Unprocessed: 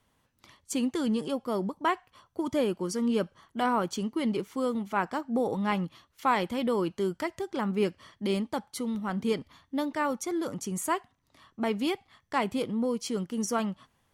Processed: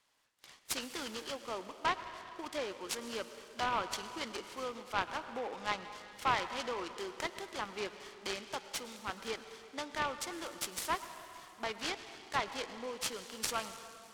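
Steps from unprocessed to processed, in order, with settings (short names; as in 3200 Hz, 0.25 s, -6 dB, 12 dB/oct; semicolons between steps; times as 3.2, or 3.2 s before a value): Bessel high-pass 400 Hz, order 2; treble ducked by the level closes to 2600 Hz, closed at -26 dBFS; LPF 7100 Hz 24 dB/oct; tilt +4 dB/oct; reverb RT60 2.9 s, pre-delay 93 ms, DRR 10 dB; noise-modulated delay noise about 1400 Hz, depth 0.048 ms; gain -5 dB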